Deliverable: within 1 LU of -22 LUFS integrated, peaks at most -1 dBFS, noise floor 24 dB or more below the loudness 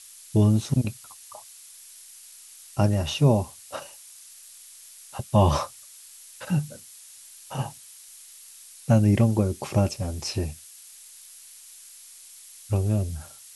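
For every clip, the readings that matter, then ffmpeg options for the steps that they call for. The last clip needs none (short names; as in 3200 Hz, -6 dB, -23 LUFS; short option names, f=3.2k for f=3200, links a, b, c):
noise floor -48 dBFS; noise floor target -49 dBFS; loudness -24.5 LUFS; peak -6.5 dBFS; loudness target -22.0 LUFS
-> -af "afftdn=nr=6:nf=-48"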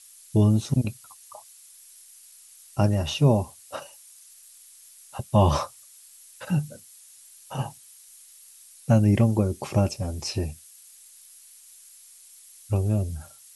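noise floor -51 dBFS; loudness -25.0 LUFS; peak -7.0 dBFS; loudness target -22.0 LUFS
-> -af "volume=3dB"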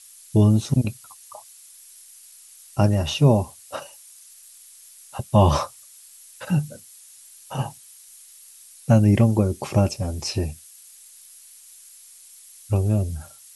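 loudness -22.0 LUFS; peak -4.0 dBFS; noise floor -48 dBFS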